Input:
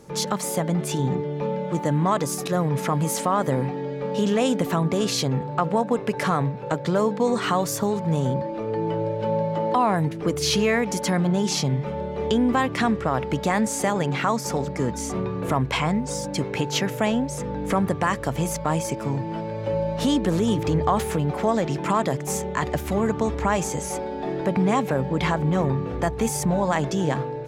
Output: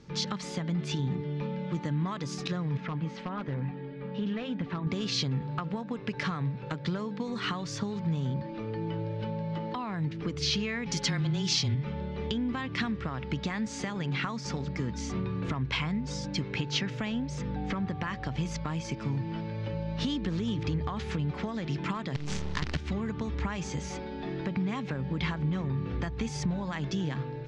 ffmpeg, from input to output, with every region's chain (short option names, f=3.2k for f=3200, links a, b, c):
-filter_complex "[0:a]asettb=1/sr,asplit=3[a][b][c];[a]atrim=end=2.774[d];[b]atrim=start=2.77:end=4.87,asetpts=PTS-STARTPTS,afade=t=in:d=0.004:c=qsin,afade=t=out:st=2.096:d=0.004:c=qsin,lowpass=2.7k,flanger=delay=1.1:depth=4.2:regen=-52:speed=1.1:shape=sinusoidal,volume=17.5dB,asoftclip=hard,volume=-17.5dB[e];[c]atrim=start=4.866[f];[d][e]acrossfade=d=0.004:c1=hsin:c2=qsin[g];[g][f]acrossfade=d=0.004:c1=qsin:c2=hsin,asettb=1/sr,asplit=3[h][i][j];[h]atrim=end=10.864[k];[i]atrim=start=10.86:end=11.75,asetpts=PTS-STARTPTS,afade=t=in:d=0.004:c=qsin,afade=t=out:st=0.886:d=0.004:c=qsin,highshelf=f=2.2k:g=8.5,afreqshift=-21[l];[j]atrim=start=11.746[m];[k][l]acrossfade=d=0.004:c1=hsin:c2=qsin[n];[n][m]acrossfade=d=0.004:c1=qsin:c2=hsin,asettb=1/sr,asplit=3[o][p][q];[o]atrim=end=17.564[r];[p]atrim=start=17.56:end=18.36,asetpts=PTS-STARTPTS,afade=t=in:d=0.004:c=qsin,afade=t=out:st=0.796:d=0.004:c=qsin,lowpass=6.3k,aeval=exprs='val(0)+0.0398*sin(2*PI*760*n/s)':c=same[s];[q]atrim=start=18.356[t];[r][s]acrossfade=d=0.004:c1=hsin:c2=qsin[u];[u][t]acrossfade=d=0.004:c1=qsin:c2=hsin,asettb=1/sr,asplit=3[v][w][x];[v]atrim=end=22.154[y];[w]atrim=start=22.15:end=22.77,asetpts=PTS-STARTPTS,afade=t=in:d=0.004:c=qsin,afade=t=out:st=0.616:d=0.004:c=qsin,equalizer=f=79:w=0.41:g=7,aeval=exprs='val(0)+0.00355*(sin(2*PI*60*n/s)+sin(2*PI*2*60*n/s)/2+sin(2*PI*3*60*n/s)/3+sin(2*PI*4*60*n/s)/4+sin(2*PI*5*60*n/s)/5)':c=same,acrusher=bits=4:dc=4:mix=0:aa=0.000001[z];[x]atrim=start=22.766[aa];[y][z]acrossfade=d=0.004:c1=hsin:c2=qsin[ab];[ab][aa]acrossfade=d=0.004:c1=qsin:c2=hsin,lowpass=f=5.1k:w=0.5412,lowpass=f=5.1k:w=1.3066,acompressor=threshold=-23dB:ratio=6,equalizer=f=630:t=o:w=1.8:g=-13.5"